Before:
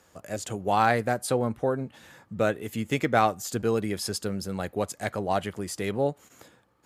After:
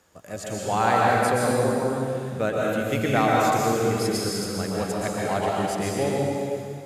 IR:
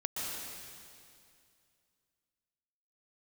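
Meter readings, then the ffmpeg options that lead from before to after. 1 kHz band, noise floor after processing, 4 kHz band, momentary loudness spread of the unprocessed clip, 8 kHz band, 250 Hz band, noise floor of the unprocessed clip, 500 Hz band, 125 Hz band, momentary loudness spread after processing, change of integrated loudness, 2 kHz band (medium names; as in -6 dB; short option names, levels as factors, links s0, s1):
+4.5 dB, -38 dBFS, +4.5 dB, 11 LU, +4.5 dB, +4.5 dB, -63 dBFS, +4.0 dB, +4.5 dB, 8 LU, +4.0 dB, +4.0 dB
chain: -filter_complex "[1:a]atrim=start_sample=2205[s0];[0:a][s0]afir=irnorm=-1:irlink=0"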